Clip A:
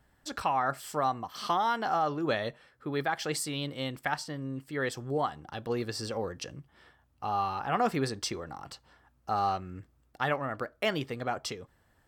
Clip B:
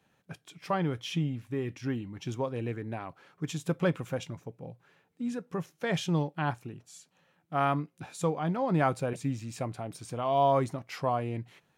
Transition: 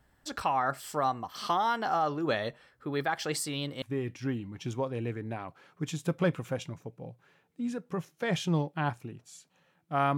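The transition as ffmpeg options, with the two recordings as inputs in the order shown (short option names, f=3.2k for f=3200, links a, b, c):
-filter_complex "[0:a]apad=whole_dur=10.17,atrim=end=10.17,atrim=end=3.822[a];[1:a]atrim=start=1.428:end=7.78[b];[a][b]acrossfade=d=0.004:c1=hsin:c2=hsin"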